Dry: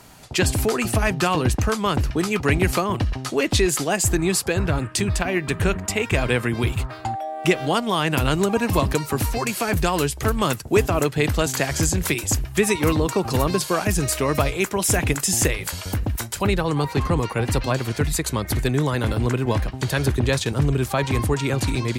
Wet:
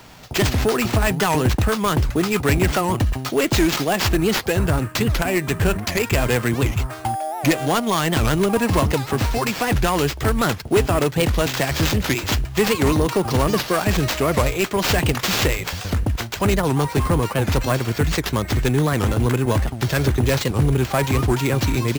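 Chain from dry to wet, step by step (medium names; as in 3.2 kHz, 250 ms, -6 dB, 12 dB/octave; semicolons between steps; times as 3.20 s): self-modulated delay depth 0.15 ms; in parallel at -7 dB: wavefolder -16.5 dBFS; on the sum: sample-rate reducer 10 kHz, jitter 0%; warped record 78 rpm, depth 250 cents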